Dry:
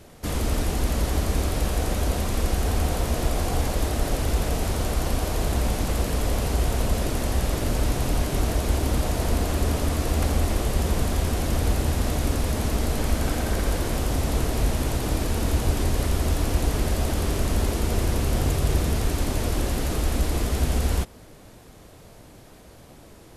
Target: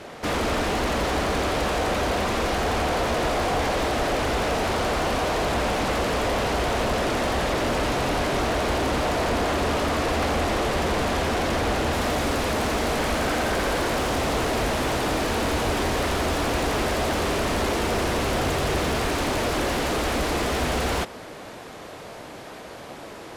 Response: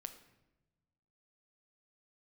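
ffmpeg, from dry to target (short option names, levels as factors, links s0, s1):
-filter_complex "[0:a]asetnsamples=n=441:p=0,asendcmd='11.94 highshelf g -3',highshelf=f=8200:g=-9.5,asplit=2[s0][s1];[s1]highpass=f=720:p=1,volume=22.4,asoftclip=type=tanh:threshold=0.335[s2];[s0][s2]amix=inputs=2:normalize=0,lowpass=f=2500:p=1,volume=0.501,volume=0.562"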